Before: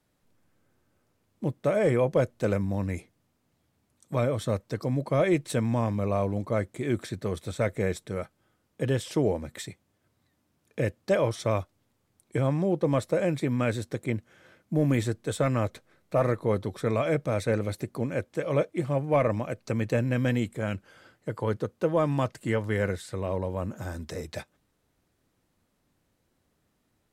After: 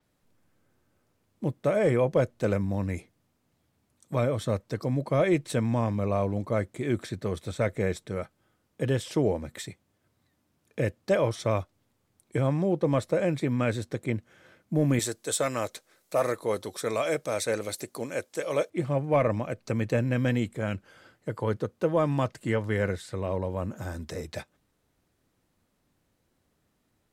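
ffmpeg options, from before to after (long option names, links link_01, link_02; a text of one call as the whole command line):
ffmpeg -i in.wav -filter_complex "[0:a]asettb=1/sr,asplit=3[link_01][link_02][link_03];[link_01]atrim=end=14.994[link_04];[link_02]atrim=start=14.99:end=18.7,asetpts=PTS-STARTPTS,afade=type=in:duration=0.004:curve=qsin,afade=type=out:start_time=3.706:duration=0.004:curve=qsin,bass=frequency=250:gain=-13,treble=frequency=4000:gain=13[link_05];[link_03]atrim=start=18.696[link_06];[link_04][link_05]acrossfade=duration=0.004:curve1=hsin:curve2=qsin[link_07];[link_07][link_06]acrossfade=duration=0.004:curve1=qsin:curve2=hsin,adynamicequalizer=threshold=0.00224:dfrequency=7900:dqfactor=0.7:tfrequency=7900:tqfactor=0.7:attack=5:release=100:ratio=0.375:range=2:mode=cutabove:tftype=highshelf" out.wav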